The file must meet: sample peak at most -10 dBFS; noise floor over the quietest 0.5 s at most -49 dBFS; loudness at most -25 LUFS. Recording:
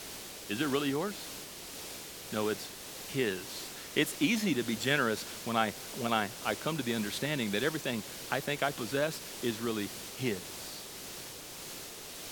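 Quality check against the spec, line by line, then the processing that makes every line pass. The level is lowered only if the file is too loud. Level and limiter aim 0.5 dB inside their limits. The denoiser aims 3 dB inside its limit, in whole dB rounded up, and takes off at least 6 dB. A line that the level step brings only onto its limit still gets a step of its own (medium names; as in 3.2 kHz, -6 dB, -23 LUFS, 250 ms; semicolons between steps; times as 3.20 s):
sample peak -12.0 dBFS: pass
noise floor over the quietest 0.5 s -45 dBFS: fail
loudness -34.0 LUFS: pass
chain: noise reduction 7 dB, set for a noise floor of -45 dBFS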